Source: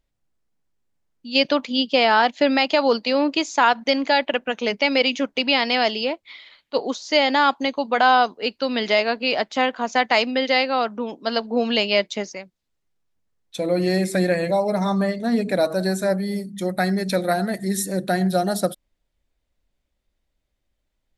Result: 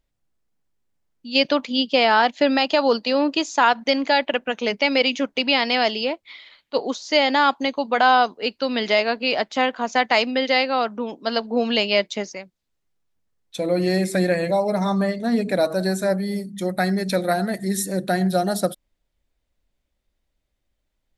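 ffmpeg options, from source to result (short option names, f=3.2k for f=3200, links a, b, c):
-filter_complex "[0:a]asettb=1/sr,asplit=3[a][b][c];[a]atrim=end=2.454[d];[b]atrim=start=2.45:end=3.62,asetpts=PTS-STARTPTS,afade=t=in:d=0.004:c=qsin,afade=t=out:st=1.166:d=0.004:c=qsin,bandreject=f=2.2k:w=8.7[e];[c]atrim=start=3.616[f];[d][e]acrossfade=d=0.004:c1=hsin:c2=qsin[g];[g][f]acrossfade=d=0.004:c1=qsin:c2=hsin"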